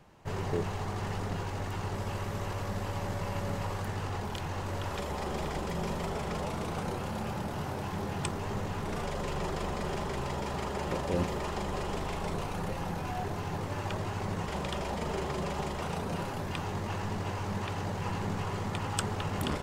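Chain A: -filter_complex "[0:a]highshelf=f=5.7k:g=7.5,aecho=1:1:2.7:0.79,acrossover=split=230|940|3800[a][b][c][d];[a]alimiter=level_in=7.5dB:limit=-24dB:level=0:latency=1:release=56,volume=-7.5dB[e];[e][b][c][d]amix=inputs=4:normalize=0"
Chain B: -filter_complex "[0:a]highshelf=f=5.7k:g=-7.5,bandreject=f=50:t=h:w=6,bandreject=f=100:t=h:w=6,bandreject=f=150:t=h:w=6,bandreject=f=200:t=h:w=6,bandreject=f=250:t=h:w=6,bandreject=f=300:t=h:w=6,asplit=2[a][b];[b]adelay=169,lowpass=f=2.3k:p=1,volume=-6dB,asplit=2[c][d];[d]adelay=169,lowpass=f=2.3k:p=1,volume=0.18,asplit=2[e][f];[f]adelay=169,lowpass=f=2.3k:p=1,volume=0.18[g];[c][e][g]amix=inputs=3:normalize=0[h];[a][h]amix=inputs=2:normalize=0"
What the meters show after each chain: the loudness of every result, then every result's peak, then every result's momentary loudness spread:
-33.5, -35.0 LUFS; -7.0, -14.5 dBFS; 3, 3 LU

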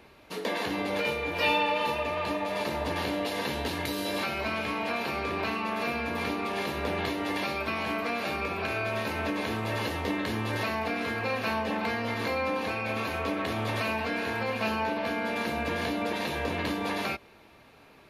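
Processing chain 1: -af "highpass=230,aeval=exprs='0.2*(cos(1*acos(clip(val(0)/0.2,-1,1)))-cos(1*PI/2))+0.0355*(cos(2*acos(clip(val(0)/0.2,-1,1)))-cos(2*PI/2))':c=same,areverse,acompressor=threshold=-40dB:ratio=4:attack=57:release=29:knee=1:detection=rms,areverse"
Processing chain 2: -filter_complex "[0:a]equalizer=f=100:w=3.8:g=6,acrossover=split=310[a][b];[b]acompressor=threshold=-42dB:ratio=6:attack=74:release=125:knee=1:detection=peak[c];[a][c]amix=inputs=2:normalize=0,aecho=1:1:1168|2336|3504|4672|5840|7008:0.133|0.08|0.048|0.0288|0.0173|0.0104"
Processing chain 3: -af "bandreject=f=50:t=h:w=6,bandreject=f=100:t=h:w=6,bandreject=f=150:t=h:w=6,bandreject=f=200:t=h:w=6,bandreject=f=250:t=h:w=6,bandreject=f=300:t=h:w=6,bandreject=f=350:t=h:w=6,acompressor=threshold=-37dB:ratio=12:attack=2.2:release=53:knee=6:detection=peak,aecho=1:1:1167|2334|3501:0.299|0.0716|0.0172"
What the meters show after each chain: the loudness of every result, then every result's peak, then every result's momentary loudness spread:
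-36.0, -35.0, -40.0 LUFS; -21.5, -20.5, -27.5 dBFS; 1, 4, 1 LU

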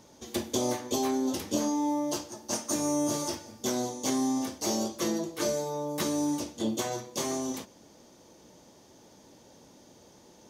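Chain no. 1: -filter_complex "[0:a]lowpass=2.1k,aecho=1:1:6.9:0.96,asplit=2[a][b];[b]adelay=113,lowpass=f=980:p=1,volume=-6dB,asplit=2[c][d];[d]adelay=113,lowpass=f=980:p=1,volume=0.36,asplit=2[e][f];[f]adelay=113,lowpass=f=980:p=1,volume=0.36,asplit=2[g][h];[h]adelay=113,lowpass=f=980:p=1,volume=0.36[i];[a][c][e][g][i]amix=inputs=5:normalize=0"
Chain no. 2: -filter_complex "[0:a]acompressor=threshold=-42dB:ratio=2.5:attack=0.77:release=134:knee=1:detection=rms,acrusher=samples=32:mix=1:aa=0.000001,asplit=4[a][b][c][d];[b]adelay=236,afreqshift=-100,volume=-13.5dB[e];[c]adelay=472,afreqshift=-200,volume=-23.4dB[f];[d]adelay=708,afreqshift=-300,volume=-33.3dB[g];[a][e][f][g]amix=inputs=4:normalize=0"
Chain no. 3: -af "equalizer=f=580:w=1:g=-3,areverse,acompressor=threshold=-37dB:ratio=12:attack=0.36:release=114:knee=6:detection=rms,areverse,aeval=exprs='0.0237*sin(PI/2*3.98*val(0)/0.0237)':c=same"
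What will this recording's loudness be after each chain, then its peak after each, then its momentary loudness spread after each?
-28.0, -42.5, -36.0 LUFS; -14.5, -30.0, -32.5 dBFS; 11, 16, 6 LU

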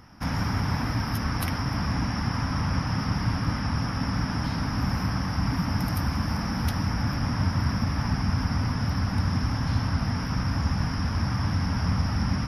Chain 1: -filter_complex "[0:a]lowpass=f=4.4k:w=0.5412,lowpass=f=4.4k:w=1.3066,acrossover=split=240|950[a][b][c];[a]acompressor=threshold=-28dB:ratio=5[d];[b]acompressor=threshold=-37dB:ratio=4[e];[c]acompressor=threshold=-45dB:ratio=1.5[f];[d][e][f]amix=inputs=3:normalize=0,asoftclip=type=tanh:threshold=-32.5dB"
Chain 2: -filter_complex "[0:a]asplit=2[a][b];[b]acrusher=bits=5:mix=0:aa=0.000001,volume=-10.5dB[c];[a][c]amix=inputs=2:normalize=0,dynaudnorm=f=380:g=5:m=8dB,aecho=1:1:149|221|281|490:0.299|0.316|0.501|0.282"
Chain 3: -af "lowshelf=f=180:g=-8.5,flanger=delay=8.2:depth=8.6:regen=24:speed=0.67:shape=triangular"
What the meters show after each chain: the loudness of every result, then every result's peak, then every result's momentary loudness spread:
-36.5, -16.5, -34.5 LUFS; -32.5, -1.5, -19.0 dBFS; 0, 3, 1 LU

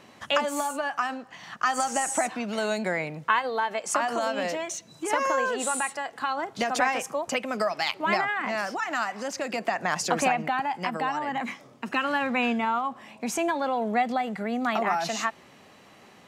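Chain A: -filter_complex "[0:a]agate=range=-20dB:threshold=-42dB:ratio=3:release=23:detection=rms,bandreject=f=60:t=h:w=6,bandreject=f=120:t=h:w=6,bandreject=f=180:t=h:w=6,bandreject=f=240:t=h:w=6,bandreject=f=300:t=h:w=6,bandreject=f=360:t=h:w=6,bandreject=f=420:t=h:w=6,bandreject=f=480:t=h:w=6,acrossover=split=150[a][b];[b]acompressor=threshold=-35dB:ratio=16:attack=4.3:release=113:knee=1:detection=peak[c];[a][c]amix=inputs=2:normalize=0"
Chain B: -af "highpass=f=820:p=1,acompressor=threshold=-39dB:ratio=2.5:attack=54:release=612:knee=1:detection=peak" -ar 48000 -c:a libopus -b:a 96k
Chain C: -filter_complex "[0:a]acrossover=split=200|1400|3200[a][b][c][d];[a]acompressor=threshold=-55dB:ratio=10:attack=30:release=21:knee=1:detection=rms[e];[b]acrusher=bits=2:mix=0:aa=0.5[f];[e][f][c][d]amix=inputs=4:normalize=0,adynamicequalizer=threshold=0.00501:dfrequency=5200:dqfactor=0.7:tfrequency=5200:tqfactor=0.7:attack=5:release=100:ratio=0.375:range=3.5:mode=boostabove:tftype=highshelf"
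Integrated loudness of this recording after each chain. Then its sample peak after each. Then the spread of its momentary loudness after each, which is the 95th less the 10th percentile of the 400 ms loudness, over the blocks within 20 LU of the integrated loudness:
-38.5, -37.5, -30.5 LUFS; -17.5, -14.5, -7.5 dBFS; 3, 5, 12 LU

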